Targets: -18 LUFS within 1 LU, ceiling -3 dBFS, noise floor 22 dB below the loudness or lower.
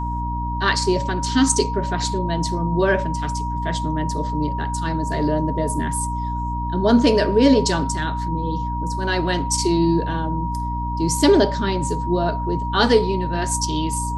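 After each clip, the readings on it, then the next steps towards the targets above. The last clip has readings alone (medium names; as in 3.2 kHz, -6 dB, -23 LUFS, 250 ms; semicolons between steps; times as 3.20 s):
hum 60 Hz; highest harmonic 300 Hz; hum level -24 dBFS; steady tone 950 Hz; tone level -26 dBFS; loudness -21.0 LUFS; peak level -3.5 dBFS; loudness target -18.0 LUFS
-> hum notches 60/120/180/240/300 Hz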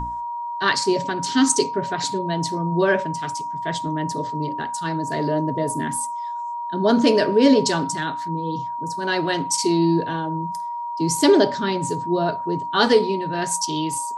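hum not found; steady tone 950 Hz; tone level -26 dBFS
-> band-stop 950 Hz, Q 30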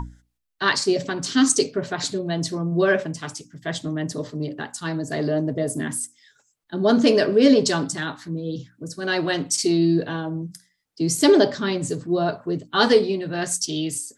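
steady tone not found; loudness -22.0 LUFS; peak level -4.5 dBFS; loudness target -18.0 LUFS
-> trim +4 dB; peak limiter -3 dBFS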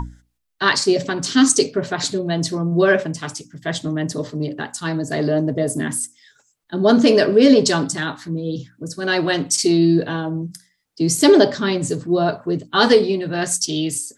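loudness -18.5 LUFS; peak level -3.0 dBFS; noise floor -66 dBFS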